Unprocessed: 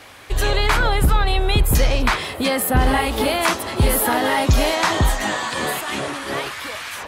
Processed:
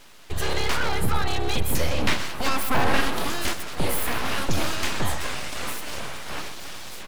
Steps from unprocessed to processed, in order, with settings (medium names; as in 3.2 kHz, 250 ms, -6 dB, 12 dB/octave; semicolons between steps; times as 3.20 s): 1.98–3.19 s: peaking EQ 710 Hz +6.5 dB 2.8 oct; full-wave rectifier; echo from a far wall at 22 m, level -12 dB; trim -5 dB